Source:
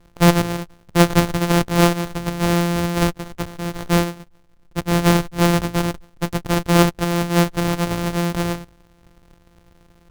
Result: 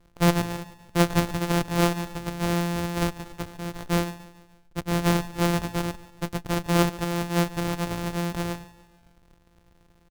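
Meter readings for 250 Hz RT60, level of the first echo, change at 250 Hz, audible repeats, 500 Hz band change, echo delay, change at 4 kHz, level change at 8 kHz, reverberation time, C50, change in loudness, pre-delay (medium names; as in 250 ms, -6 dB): no reverb, -18.5 dB, -7.0 dB, 3, -7.0 dB, 144 ms, -7.0 dB, -7.0 dB, no reverb, no reverb, -7.0 dB, no reverb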